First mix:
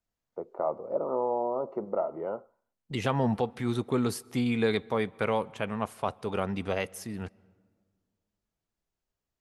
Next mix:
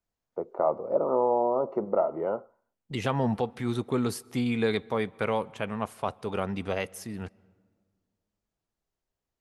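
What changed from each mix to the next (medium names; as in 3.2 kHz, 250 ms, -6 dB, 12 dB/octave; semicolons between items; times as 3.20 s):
first voice +4.5 dB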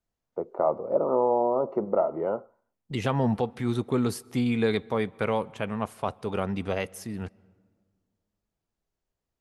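master: add bass shelf 420 Hz +3 dB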